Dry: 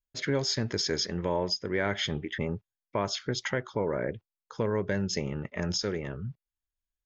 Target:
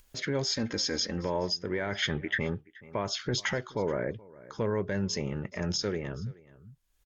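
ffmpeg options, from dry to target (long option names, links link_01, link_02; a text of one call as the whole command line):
ffmpeg -i in.wav -filter_complex "[0:a]asettb=1/sr,asplit=3[link_01][link_02][link_03];[link_01]atrim=end=3.194[link_04];[link_02]atrim=start=3.19:end=3.59,asetpts=PTS-STARTPTS,afade=type=in:duration=0.004:curve=qsin,afade=type=out:start_time=0.396:duration=0.004:curve=qsin,acontrast=89[link_05];[link_03]atrim=start=3.586[link_06];[link_04][link_05]acrossfade=duration=0.004:curve1=hsin:curve2=qsin[link_07];[link_07][link_06]acrossfade=duration=0.004:curve1=qsin:curve2=hsin,alimiter=limit=-20.5dB:level=0:latency=1:release=11,asettb=1/sr,asplit=3[link_08][link_09][link_10];[link_08]atrim=end=2.024[link_11];[link_09]atrim=start=2.02:end=2.55,asetpts=PTS-STARTPTS,afade=type=in:duration=0.004:curve=qsin,afade=type=out:start_time=0.526:duration=0.004:curve=qsin,equalizer=frequency=1600:width=1.6:gain=11[link_12];[link_10]atrim=start=2.546[link_13];[link_11][link_12]acrossfade=duration=0.004:curve1=hsin:curve2=qsin[link_14];[link_14][link_13]acrossfade=duration=0.004:curve1=qsin:curve2=hsin,aecho=1:1:426:0.0708,acompressor=mode=upward:threshold=-40dB:ratio=2.5,asettb=1/sr,asplit=3[link_15][link_16][link_17];[link_15]atrim=end=0.514[link_18];[link_16]atrim=start=0.51:end=1.25,asetpts=PTS-STARTPTS,afade=type=in:duration=0.004:curve=qsin,afade=type=out:start_time=0.736:duration=0.004:curve=qsin,aecho=1:1:3.8:0.58,atrim=end_sample=32634[link_19];[link_17]atrim=start=1.246[link_20];[link_18][link_19]acrossfade=duration=0.004:curve1=hsin:curve2=qsin[link_21];[link_21][link_20]acrossfade=duration=0.004:curve1=qsin:curve2=hsin" -ar 48000 -c:a libvorbis -b:a 96k out.ogg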